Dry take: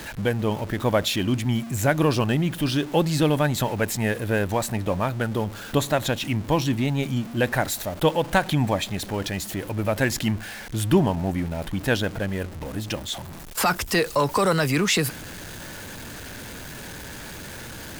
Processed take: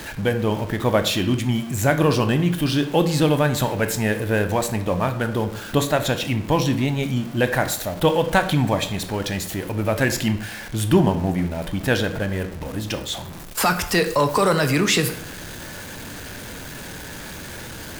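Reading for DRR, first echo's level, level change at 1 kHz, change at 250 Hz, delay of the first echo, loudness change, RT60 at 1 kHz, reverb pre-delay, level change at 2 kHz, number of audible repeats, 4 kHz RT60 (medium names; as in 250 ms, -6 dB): 8.0 dB, no echo, +2.5 dB, +2.5 dB, no echo, +2.5 dB, 0.70 s, 18 ms, +2.5 dB, no echo, 0.50 s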